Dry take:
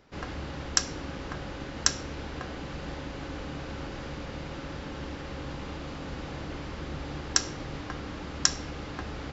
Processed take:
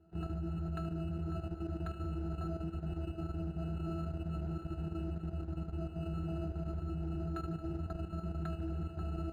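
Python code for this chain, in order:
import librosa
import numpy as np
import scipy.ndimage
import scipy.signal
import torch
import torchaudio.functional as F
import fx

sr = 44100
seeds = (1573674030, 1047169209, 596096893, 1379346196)

y = fx.octave_resonator(x, sr, note='E', decay_s=0.41)
y = fx.level_steps(y, sr, step_db=9)
y = fx.air_absorb(y, sr, metres=130.0)
y = fx.echo_thinned(y, sr, ms=75, feedback_pct=77, hz=420.0, wet_db=-14.5)
y = np.interp(np.arange(len(y)), np.arange(len(y))[::8], y[::8])
y = F.gain(torch.from_numpy(y), 17.0).numpy()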